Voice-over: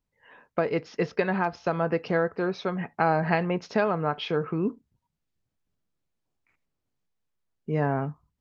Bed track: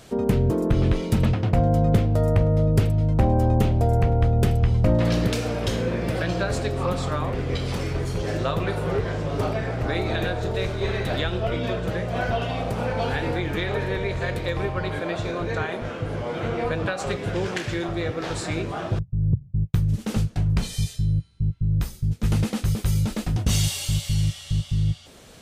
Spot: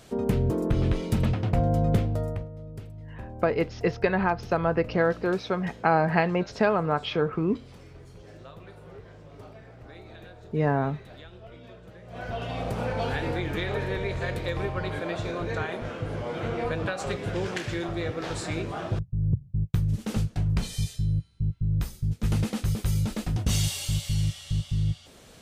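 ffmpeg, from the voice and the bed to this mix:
-filter_complex "[0:a]adelay=2850,volume=1.5dB[a];[1:a]volume=13.5dB,afade=t=out:st=1.98:d=0.51:silence=0.141254,afade=t=in:st=12.02:d=0.65:silence=0.133352[b];[a][b]amix=inputs=2:normalize=0"

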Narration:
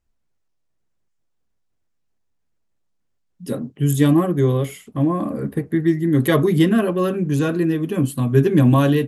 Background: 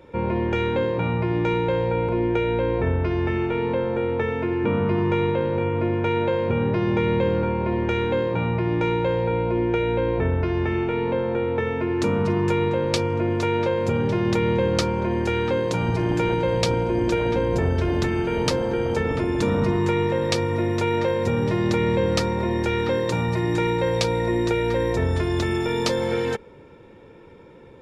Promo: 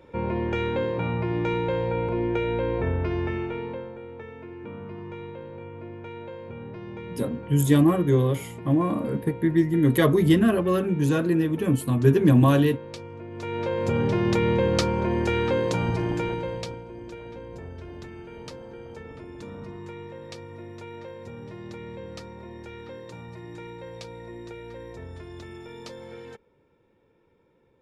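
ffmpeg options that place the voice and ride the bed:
-filter_complex "[0:a]adelay=3700,volume=-3dB[a];[1:a]volume=12dB,afade=t=out:st=3.15:d=0.82:silence=0.223872,afade=t=in:st=13.31:d=0.68:silence=0.16788,afade=t=out:st=15.68:d=1.14:silence=0.141254[b];[a][b]amix=inputs=2:normalize=0"

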